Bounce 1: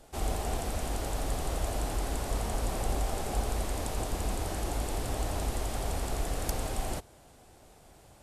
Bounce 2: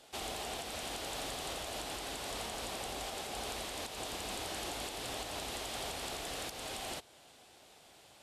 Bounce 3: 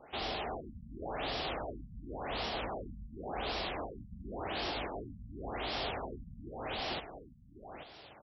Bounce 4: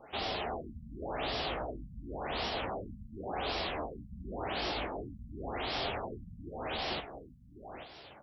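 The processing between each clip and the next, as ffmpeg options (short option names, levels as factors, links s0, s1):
-af "highpass=f=320:p=1,equalizer=f=3400:w=0.91:g=10,alimiter=level_in=1.33:limit=0.0631:level=0:latency=1:release=246,volume=0.75,volume=0.708"
-af "asoftclip=type=tanh:threshold=0.0141,aecho=1:1:834:0.376,afftfilt=real='re*lt(b*sr/1024,220*pow(5800/220,0.5+0.5*sin(2*PI*0.91*pts/sr)))':imag='im*lt(b*sr/1024,220*pow(5800/220,0.5+0.5*sin(2*PI*0.91*pts/sr)))':win_size=1024:overlap=0.75,volume=2.11"
-af "flanger=delay=9:depth=8.1:regen=-37:speed=0.33:shape=triangular,volume=1.88"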